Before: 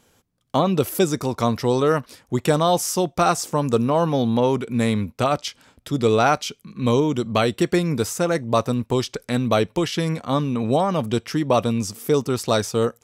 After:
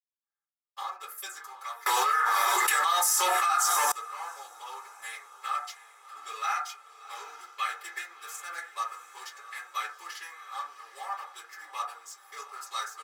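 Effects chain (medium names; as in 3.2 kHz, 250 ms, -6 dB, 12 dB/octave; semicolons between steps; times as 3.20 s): local Wiener filter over 15 samples; gate with hold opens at -45 dBFS; high-pass 1.2 kHz 24 dB/octave; treble shelf 9.2 kHz +11 dB; band-stop 2.9 kHz, Q 27; comb 2.4 ms, depth 89%; echo that smears into a reverb 713 ms, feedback 53%, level -14 dB; reverberation RT60 0.35 s, pre-delay 222 ms; 1.86–3.92 s: level flattener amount 100%; trim -5.5 dB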